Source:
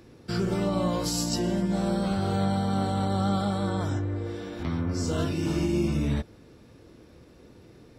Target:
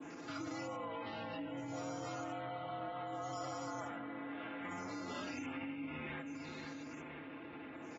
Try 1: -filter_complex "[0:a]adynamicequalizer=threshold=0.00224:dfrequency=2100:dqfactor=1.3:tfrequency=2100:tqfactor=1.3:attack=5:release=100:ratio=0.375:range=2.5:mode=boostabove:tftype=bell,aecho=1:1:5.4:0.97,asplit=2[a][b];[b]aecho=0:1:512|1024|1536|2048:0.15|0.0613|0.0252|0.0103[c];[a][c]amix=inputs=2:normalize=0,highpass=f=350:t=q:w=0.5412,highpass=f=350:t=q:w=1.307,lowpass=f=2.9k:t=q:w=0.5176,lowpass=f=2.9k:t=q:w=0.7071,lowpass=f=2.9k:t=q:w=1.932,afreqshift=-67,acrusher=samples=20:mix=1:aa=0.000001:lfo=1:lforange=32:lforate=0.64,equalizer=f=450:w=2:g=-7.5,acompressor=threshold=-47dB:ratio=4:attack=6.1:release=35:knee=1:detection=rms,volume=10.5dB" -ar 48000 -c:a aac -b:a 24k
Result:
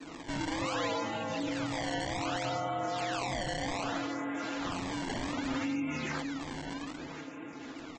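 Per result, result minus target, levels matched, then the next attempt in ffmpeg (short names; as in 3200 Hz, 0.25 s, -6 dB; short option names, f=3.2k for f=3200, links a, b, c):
decimation with a swept rate: distortion +14 dB; compressor: peak gain reduction -8.5 dB
-filter_complex "[0:a]adynamicequalizer=threshold=0.00224:dfrequency=2100:dqfactor=1.3:tfrequency=2100:tqfactor=1.3:attack=5:release=100:ratio=0.375:range=2.5:mode=boostabove:tftype=bell,aecho=1:1:5.4:0.97,asplit=2[a][b];[b]aecho=0:1:512|1024|1536|2048:0.15|0.0613|0.0252|0.0103[c];[a][c]amix=inputs=2:normalize=0,highpass=f=350:t=q:w=0.5412,highpass=f=350:t=q:w=1.307,lowpass=f=2.9k:t=q:w=0.5176,lowpass=f=2.9k:t=q:w=0.7071,lowpass=f=2.9k:t=q:w=1.932,afreqshift=-67,acrusher=samples=4:mix=1:aa=0.000001:lfo=1:lforange=6.4:lforate=0.64,equalizer=f=450:w=2:g=-7.5,acompressor=threshold=-47dB:ratio=4:attack=6.1:release=35:knee=1:detection=rms,volume=10.5dB" -ar 48000 -c:a aac -b:a 24k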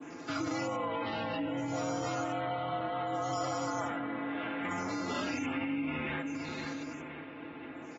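compressor: peak gain reduction -8.5 dB
-filter_complex "[0:a]adynamicequalizer=threshold=0.00224:dfrequency=2100:dqfactor=1.3:tfrequency=2100:tqfactor=1.3:attack=5:release=100:ratio=0.375:range=2.5:mode=boostabove:tftype=bell,aecho=1:1:5.4:0.97,asplit=2[a][b];[b]aecho=0:1:512|1024|1536|2048:0.15|0.0613|0.0252|0.0103[c];[a][c]amix=inputs=2:normalize=0,highpass=f=350:t=q:w=0.5412,highpass=f=350:t=q:w=1.307,lowpass=f=2.9k:t=q:w=0.5176,lowpass=f=2.9k:t=q:w=0.7071,lowpass=f=2.9k:t=q:w=1.932,afreqshift=-67,acrusher=samples=4:mix=1:aa=0.000001:lfo=1:lforange=6.4:lforate=0.64,equalizer=f=450:w=2:g=-7.5,acompressor=threshold=-58.5dB:ratio=4:attack=6.1:release=35:knee=1:detection=rms,volume=10.5dB" -ar 48000 -c:a aac -b:a 24k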